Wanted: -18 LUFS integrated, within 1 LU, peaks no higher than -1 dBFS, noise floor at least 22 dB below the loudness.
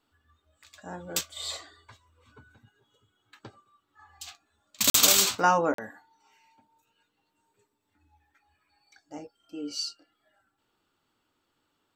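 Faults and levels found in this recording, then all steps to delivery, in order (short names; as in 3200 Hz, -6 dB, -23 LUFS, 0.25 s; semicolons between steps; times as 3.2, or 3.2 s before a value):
dropouts 2; longest dropout 43 ms; loudness -24.0 LUFS; peak -5.5 dBFS; loudness target -18.0 LUFS
-> interpolate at 4.9/5.74, 43 ms; gain +6 dB; limiter -1 dBFS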